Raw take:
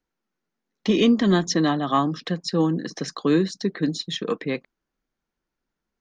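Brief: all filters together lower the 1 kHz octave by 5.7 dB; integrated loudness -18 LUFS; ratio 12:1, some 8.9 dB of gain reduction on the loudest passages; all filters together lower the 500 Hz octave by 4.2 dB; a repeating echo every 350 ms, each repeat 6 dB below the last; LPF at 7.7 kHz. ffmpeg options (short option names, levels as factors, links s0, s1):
-af "lowpass=7700,equalizer=f=500:t=o:g=-4.5,equalizer=f=1000:t=o:g=-6,acompressor=threshold=0.0631:ratio=12,aecho=1:1:350|700|1050|1400|1750|2100:0.501|0.251|0.125|0.0626|0.0313|0.0157,volume=3.76"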